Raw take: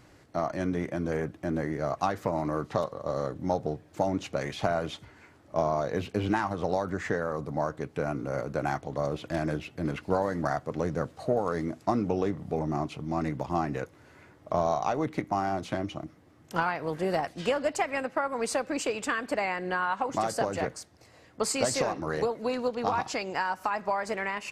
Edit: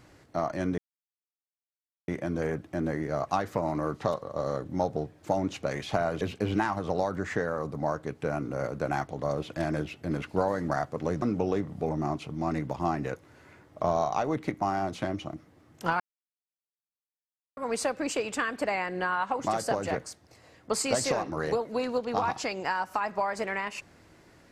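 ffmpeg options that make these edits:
ffmpeg -i in.wav -filter_complex "[0:a]asplit=6[link_01][link_02][link_03][link_04][link_05][link_06];[link_01]atrim=end=0.78,asetpts=PTS-STARTPTS,afade=type=out:start_time=0.776:duration=0.004:curve=hsin,apad=pad_dur=1.3[link_07];[link_02]atrim=start=0.78:end=4.912,asetpts=PTS-STARTPTS,afade=type=in:duration=0.004:curve=hsin[link_08];[link_03]atrim=start=5.948:end=10.962[link_09];[link_04]atrim=start=11.918:end=16.7,asetpts=PTS-STARTPTS,afade=type=out:start_time=4.778:duration=0.004:curve=hsin[link_10];[link_05]atrim=start=16.7:end=18.27,asetpts=PTS-STARTPTS,volume=0[link_11];[link_06]atrim=start=18.27,asetpts=PTS-STARTPTS,afade=type=in:duration=0.004:curve=hsin[link_12];[link_07][link_08]concat=n=2:v=0:a=1[link_13];[link_13][link_09]acrossfade=duration=0.004:curve1=hsin:curve2=hsin[link_14];[link_10][link_11][link_12]concat=n=3:v=0:a=1[link_15];[link_14][link_15]acrossfade=duration=0.004:curve1=hsin:curve2=hsin" out.wav

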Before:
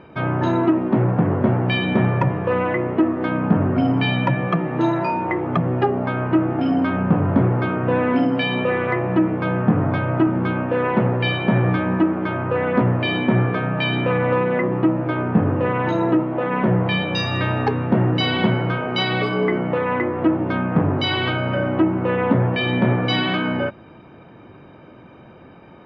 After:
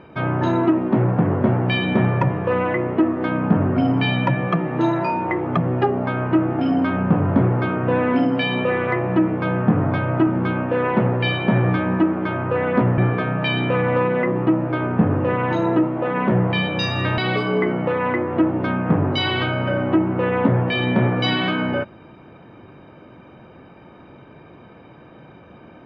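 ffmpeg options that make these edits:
ffmpeg -i in.wav -filter_complex "[0:a]asplit=3[link_01][link_02][link_03];[link_01]atrim=end=12.982[link_04];[link_02]atrim=start=13.338:end=17.542[link_05];[link_03]atrim=start=19.038[link_06];[link_04][link_05]acrossfade=duration=0.004:curve1=hsin:curve2=hsin[link_07];[link_07][link_06]acrossfade=duration=0.004:curve1=hsin:curve2=hsin" out.wav

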